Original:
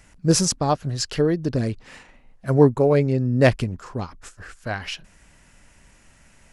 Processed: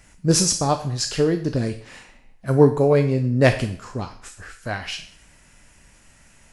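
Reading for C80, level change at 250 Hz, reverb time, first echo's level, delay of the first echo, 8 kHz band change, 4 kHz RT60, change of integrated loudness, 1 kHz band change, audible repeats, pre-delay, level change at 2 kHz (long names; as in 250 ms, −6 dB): 14.0 dB, 0.0 dB, 0.60 s, no echo audible, no echo audible, +3.0 dB, 0.50 s, +1.0 dB, +0.5 dB, no echo audible, 9 ms, +1.5 dB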